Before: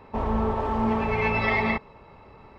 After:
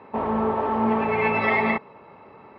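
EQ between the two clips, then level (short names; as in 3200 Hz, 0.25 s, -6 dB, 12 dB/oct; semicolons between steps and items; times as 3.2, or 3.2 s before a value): BPF 180–2700 Hz; +3.5 dB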